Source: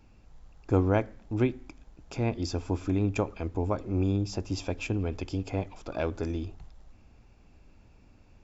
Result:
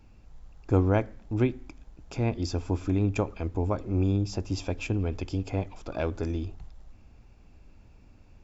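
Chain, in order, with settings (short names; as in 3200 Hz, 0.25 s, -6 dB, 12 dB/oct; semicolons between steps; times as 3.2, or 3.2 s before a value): low shelf 130 Hz +4 dB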